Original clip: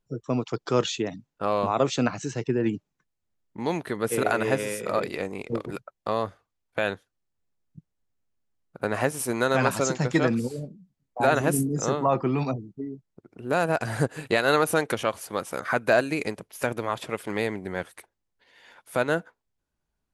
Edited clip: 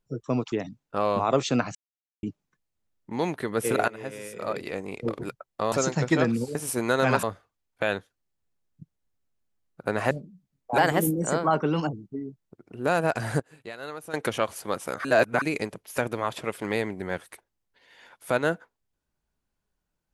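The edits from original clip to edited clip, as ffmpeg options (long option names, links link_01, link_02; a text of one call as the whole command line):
ffmpeg -i in.wav -filter_complex "[0:a]asplit=15[link_01][link_02][link_03][link_04][link_05][link_06][link_07][link_08][link_09][link_10][link_11][link_12][link_13][link_14][link_15];[link_01]atrim=end=0.522[link_16];[link_02]atrim=start=0.988:end=2.22,asetpts=PTS-STARTPTS,afade=type=out:start_time=1.228:duration=0.004:curve=hsin[link_17];[link_03]atrim=start=2.22:end=2.7,asetpts=PTS-STARTPTS,volume=0[link_18];[link_04]atrim=start=2.7:end=4.35,asetpts=PTS-STARTPTS,afade=type=in:duration=0.004:curve=hsin,afade=type=out:start_time=1.646:duration=0.004:curve=hsin:silence=0.11885[link_19];[link_05]atrim=start=4.35:end=6.192,asetpts=PTS-STARTPTS,afade=type=in:duration=1.15:silence=0.11885[link_20];[link_06]atrim=start=9.748:end=10.582[link_21];[link_07]atrim=start=9.068:end=9.752[link_22];[link_08]atrim=start=6.188:end=9.072[link_23];[link_09]atrim=start=10.578:end=11.254[link_24];[link_10]atrim=start=11.25:end=12.58,asetpts=PTS-STARTPTS,asetrate=51156,aresample=44100[link_25];[link_11]atrim=start=12.576:end=14.05,asetpts=PTS-STARTPTS,afade=type=out:start_time=1.234:duration=0.24:curve=log:silence=0.149624[link_26];[link_12]atrim=start=14.05:end=14.79,asetpts=PTS-STARTPTS,volume=-16.5dB[link_27];[link_13]atrim=start=14.79:end=15.702,asetpts=PTS-STARTPTS,afade=type=in:duration=0.24:curve=log:silence=0.149624[link_28];[link_14]atrim=start=15.698:end=16.072,asetpts=PTS-STARTPTS,areverse[link_29];[link_15]atrim=start=16.068[link_30];[link_17][link_18][link_19][link_20]concat=n=4:v=0:a=1[link_31];[link_16][link_31]acrossfade=duration=0.004:curve1=hsin:curve2=hsin[link_32];[link_32][link_21]acrossfade=duration=0.004:curve1=hsin:curve2=hsin[link_33];[link_33][link_22]acrossfade=duration=0.004:curve1=hsin:curve2=hsin[link_34];[link_34][link_23]acrossfade=duration=0.004:curve1=hsin:curve2=hsin[link_35];[link_35][link_24]acrossfade=duration=0.004:curve1=hsin:curve2=hsin[link_36];[link_36][link_25]acrossfade=duration=0.004:curve1=hsin:curve2=hsin[link_37];[link_26][link_27][link_28]concat=n=3:v=0:a=1[link_38];[link_37][link_38]acrossfade=duration=0.004:curve1=hsin:curve2=hsin[link_39];[link_39][link_29]acrossfade=duration=0.004:curve1=hsin:curve2=hsin[link_40];[link_40][link_30]acrossfade=duration=0.004:curve1=hsin:curve2=hsin" out.wav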